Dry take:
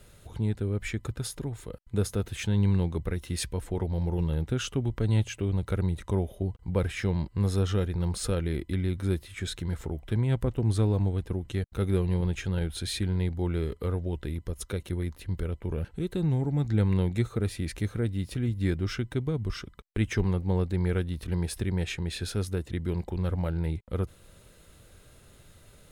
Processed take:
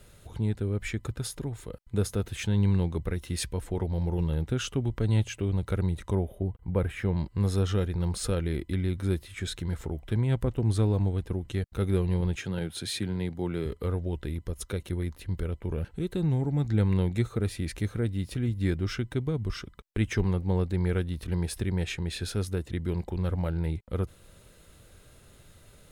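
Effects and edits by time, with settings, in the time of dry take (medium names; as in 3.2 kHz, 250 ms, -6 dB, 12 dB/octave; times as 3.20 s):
6.15–7.17 s: peaking EQ 5.3 kHz -13.5 dB 1.3 oct
12.36–13.66 s: high-pass 110 Hz 24 dB/octave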